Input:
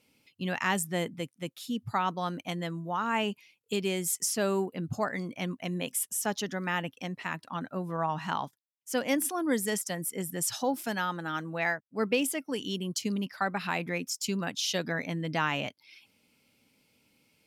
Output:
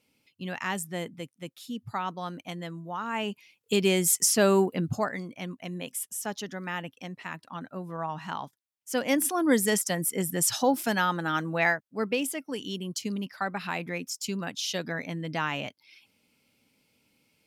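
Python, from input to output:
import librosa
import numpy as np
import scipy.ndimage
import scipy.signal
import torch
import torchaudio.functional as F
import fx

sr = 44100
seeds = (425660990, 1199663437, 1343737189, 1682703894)

y = fx.gain(x, sr, db=fx.line((3.12, -3.0), (3.83, 7.0), (4.76, 7.0), (5.29, -3.0), (8.39, -3.0), (9.5, 5.5), (11.65, 5.5), (12.07, -1.0)))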